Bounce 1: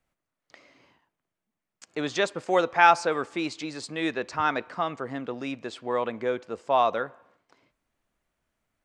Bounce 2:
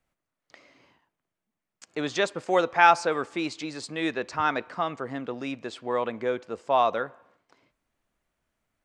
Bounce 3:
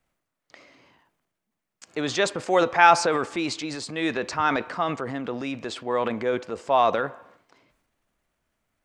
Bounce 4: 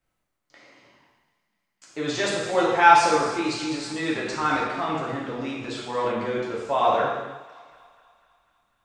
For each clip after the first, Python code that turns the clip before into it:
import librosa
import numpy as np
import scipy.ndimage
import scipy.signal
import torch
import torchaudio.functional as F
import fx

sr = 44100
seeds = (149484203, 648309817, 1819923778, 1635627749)

y1 = x
y2 = fx.transient(y1, sr, attack_db=0, sustain_db=7)
y2 = y2 * 10.0 ** (2.0 / 20.0)
y3 = fx.echo_thinned(y2, sr, ms=247, feedback_pct=64, hz=540.0, wet_db=-18.0)
y3 = fx.rev_gated(y3, sr, seeds[0], gate_ms=390, shape='falling', drr_db=-5.5)
y3 = y3 * 10.0 ** (-6.5 / 20.0)